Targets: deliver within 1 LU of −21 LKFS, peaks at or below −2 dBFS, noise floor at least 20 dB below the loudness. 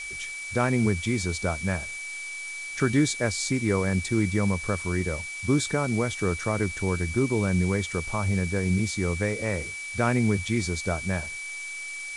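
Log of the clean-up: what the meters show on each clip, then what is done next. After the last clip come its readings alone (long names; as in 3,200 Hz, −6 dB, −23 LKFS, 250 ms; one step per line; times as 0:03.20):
interfering tone 2,300 Hz; level of the tone −34 dBFS; background noise floor −36 dBFS; target noise floor −47 dBFS; integrated loudness −27.0 LKFS; sample peak −9.5 dBFS; target loudness −21.0 LKFS
→ notch filter 2,300 Hz, Q 30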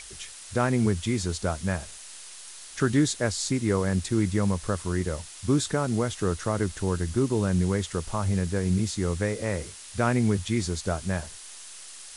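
interfering tone none found; background noise floor −44 dBFS; target noise floor −47 dBFS
→ broadband denoise 6 dB, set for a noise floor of −44 dBFS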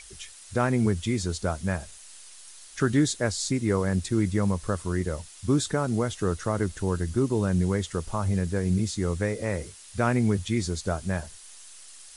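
background noise floor −48 dBFS; integrated loudness −27.0 LKFS; sample peak −10.0 dBFS; target loudness −21.0 LKFS
→ level +6 dB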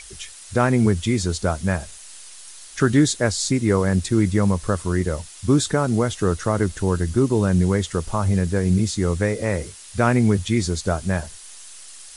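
integrated loudness −21.0 LKFS; sample peak −4.0 dBFS; background noise floor −42 dBFS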